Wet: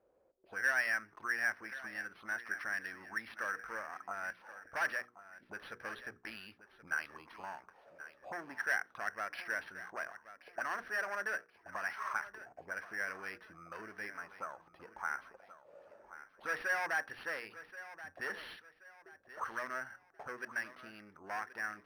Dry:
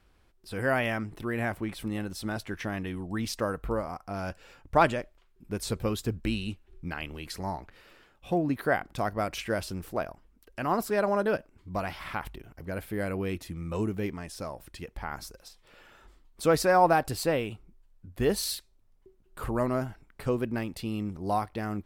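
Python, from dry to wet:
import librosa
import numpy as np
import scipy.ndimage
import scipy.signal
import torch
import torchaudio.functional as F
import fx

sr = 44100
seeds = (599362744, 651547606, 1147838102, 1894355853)

y = fx.hum_notches(x, sr, base_hz=60, count=8)
y = fx.tube_stage(y, sr, drive_db=26.0, bias=0.3)
y = fx.auto_wah(y, sr, base_hz=510.0, top_hz=1700.0, q=5.6, full_db=-33.0, direction='up')
y = fx.echo_feedback(y, sr, ms=1079, feedback_pct=34, wet_db=-14.5)
y = np.interp(np.arange(len(y)), np.arange(len(y))[::6], y[::6])
y = y * 10.0 ** (10.0 / 20.0)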